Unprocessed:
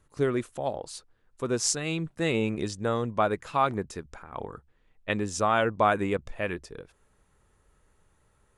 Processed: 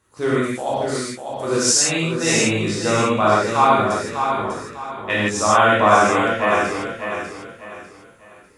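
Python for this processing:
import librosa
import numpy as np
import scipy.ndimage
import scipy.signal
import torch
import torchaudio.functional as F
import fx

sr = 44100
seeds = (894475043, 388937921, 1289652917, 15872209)

y = scipy.signal.sosfilt(scipy.signal.butter(2, 54.0, 'highpass', fs=sr, output='sos'), x)
y = fx.low_shelf(y, sr, hz=260.0, db=-8.0)
y = fx.echo_feedback(y, sr, ms=597, feedback_pct=32, wet_db=-6.5)
y = fx.rev_gated(y, sr, seeds[0], gate_ms=190, shape='flat', drr_db=-8.0)
y = F.gain(torch.from_numpy(y), 3.0).numpy()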